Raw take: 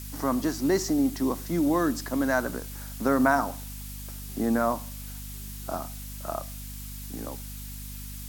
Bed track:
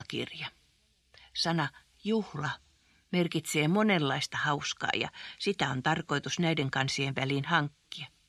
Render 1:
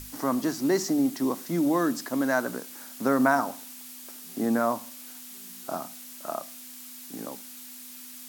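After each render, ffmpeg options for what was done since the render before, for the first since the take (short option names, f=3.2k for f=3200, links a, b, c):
-af "bandreject=f=50:t=h:w=6,bandreject=f=100:t=h:w=6,bandreject=f=150:t=h:w=6,bandreject=f=200:t=h:w=6"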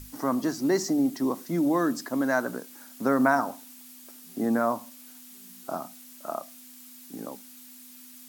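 -af "afftdn=nr=6:nf=-44"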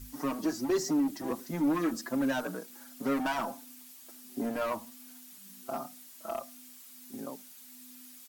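-filter_complex "[0:a]volume=23dB,asoftclip=hard,volume=-23dB,asplit=2[a][b];[b]adelay=5.4,afreqshift=1.4[c];[a][c]amix=inputs=2:normalize=1"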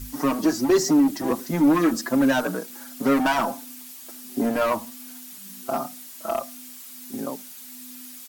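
-af "volume=10dB"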